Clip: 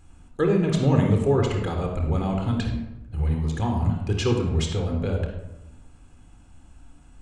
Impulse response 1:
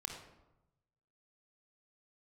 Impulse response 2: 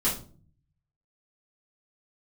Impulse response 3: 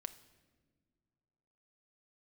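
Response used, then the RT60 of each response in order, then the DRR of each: 1; 0.95 s, 0.45 s, not exponential; 2.0, -8.0, 10.0 dB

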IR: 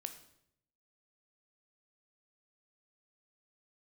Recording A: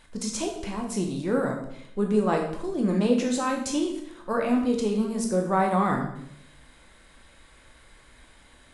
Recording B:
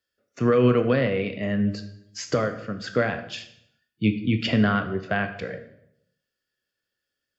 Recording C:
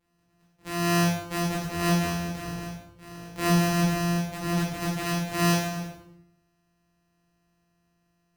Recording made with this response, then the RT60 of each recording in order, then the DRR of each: B; 0.70, 0.75, 0.70 s; 1.0, 7.5, -7.0 dB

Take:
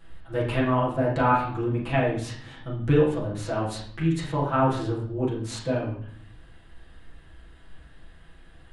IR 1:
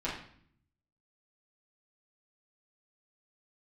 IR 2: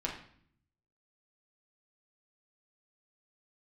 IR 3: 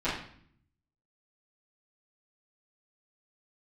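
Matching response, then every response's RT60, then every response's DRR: 1; 0.55, 0.55, 0.55 s; -8.5, -2.5, -14.5 dB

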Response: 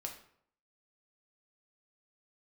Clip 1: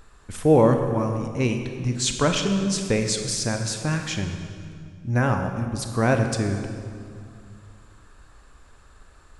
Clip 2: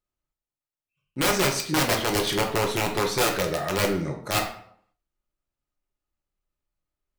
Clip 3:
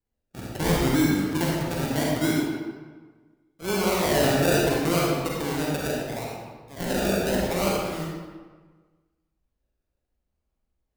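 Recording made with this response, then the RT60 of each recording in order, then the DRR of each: 2; 2.3, 0.65, 1.4 s; 5.0, 1.0, -3.5 dB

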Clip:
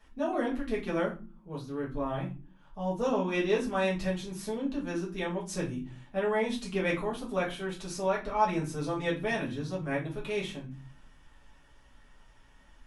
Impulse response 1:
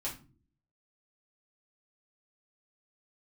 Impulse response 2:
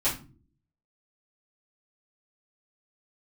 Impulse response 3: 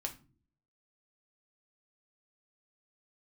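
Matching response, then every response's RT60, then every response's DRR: 1; not exponential, not exponential, not exponential; -6.0, -11.5, 3.0 dB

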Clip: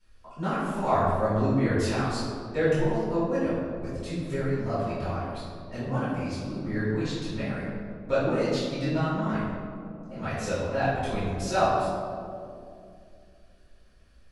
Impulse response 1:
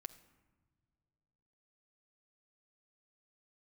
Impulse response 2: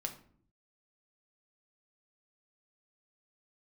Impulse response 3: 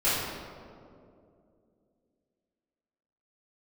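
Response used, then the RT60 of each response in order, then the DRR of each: 3; not exponential, not exponential, 2.5 s; 7.0, 4.0, -14.0 dB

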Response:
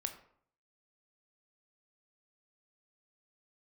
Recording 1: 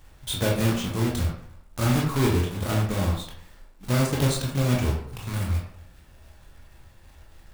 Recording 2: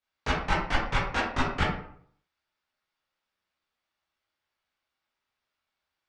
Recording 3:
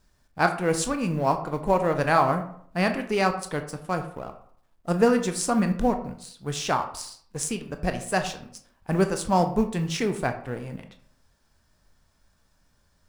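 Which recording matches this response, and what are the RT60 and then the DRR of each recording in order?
3; 0.60, 0.60, 0.60 s; -2.5, -9.5, 6.5 dB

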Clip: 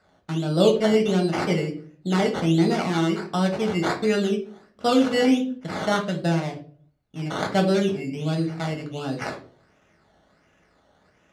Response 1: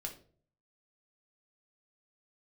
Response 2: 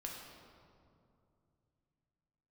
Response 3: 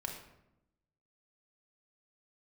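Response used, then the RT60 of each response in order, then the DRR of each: 1; 0.50, 2.6, 0.85 s; 1.5, -1.5, 1.0 dB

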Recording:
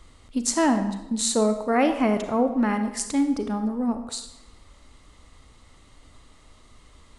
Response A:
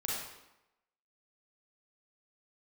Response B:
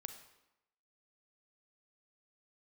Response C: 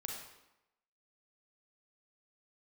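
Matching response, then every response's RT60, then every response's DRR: B; 0.90, 0.90, 0.90 s; -5.5, 7.5, -0.5 dB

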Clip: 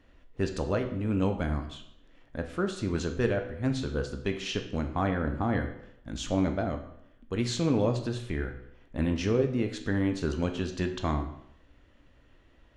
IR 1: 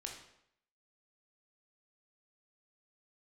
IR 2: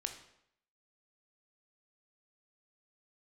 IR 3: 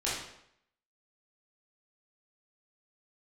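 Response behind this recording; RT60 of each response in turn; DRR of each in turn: 2; 0.75, 0.75, 0.75 s; 0.5, 5.5, -8.5 dB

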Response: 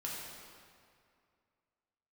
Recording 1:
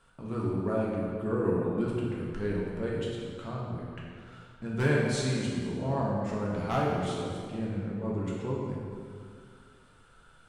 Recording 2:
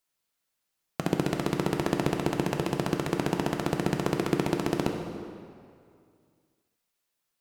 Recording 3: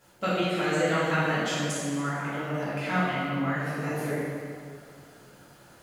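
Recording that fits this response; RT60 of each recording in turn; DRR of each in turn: 1; 2.3, 2.3, 2.3 s; -5.0, 2.5, -12.5 dB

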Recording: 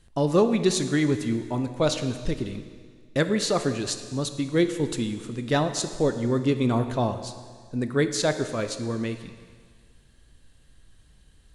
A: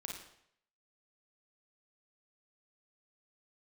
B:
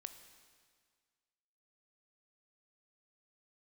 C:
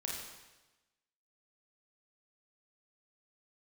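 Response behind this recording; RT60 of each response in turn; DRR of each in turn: B; 0.70, 1.8, 1.1 s; -0.5, 8.5, -3.0 dB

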